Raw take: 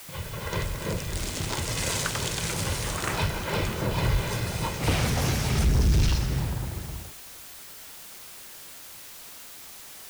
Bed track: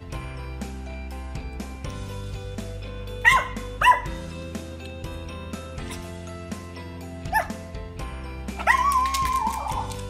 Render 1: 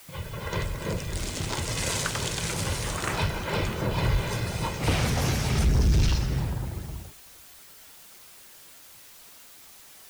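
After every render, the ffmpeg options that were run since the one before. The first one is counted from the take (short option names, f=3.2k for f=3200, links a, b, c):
-af "afftdn=nr=6:nf=-44"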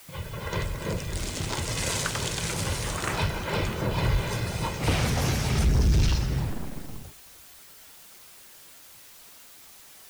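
-filter_complex "[0:a]asettb=1/sr,asplit=3[a][b][c];[a]atrim=end=6.504[d];[b]atrim=start=6.5:end=7.03,asetpts=PTS-STARTPTS,afade=t=in:d=0.004:c=qsin,afade=t=out:st=0.526:d=0.004:c=qsin,aeval=exprs='abs(val(0))':c=same[e];[c]atrim=start=7.026[f];[d][e]acrossfade=d=0.004:c1=hsin:c2=qsin[g];[g][f]acrossfade=d=0.004:c1=qsin:c2=hsin"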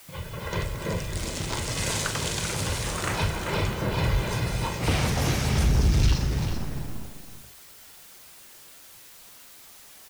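-filter_complex "[0:a]asplit=2[a][b];[b]adelay=40,volume=-11.5dB[c];[a][c]amix=inputs=2:normalize=0,aecho=1:1:390:0.376"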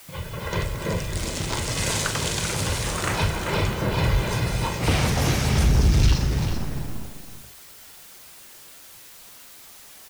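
-af "volume=3dB"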